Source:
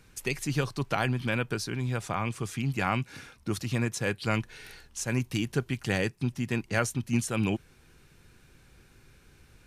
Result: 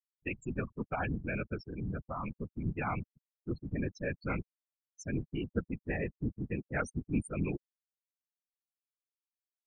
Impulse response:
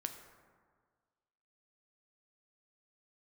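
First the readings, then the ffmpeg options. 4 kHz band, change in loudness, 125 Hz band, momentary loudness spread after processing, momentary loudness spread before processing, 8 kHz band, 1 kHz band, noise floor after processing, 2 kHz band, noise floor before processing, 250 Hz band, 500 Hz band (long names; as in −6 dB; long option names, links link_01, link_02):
−20.5 dB, −7.0 dB, −7.5 dB, 6 LU, 7 LU, −17.5 dB, −7.0 dB, below −85 dBFS, −8.0 dB, −59 dBFS, −5.5 dB, −6.0 dB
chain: -af "afftfilt=real='re*gte(hypot(re,im),0.0708)':imag='im*gte(hypot(re,im),0.0708)':win_size=1024:overlap=0.75,afftfilt=real='hypot(re,im)*cos(2*PI*random(0))':imag='hypot(re,im)*sin(2*PI*random(1))':win_size=512:overlap=0.75"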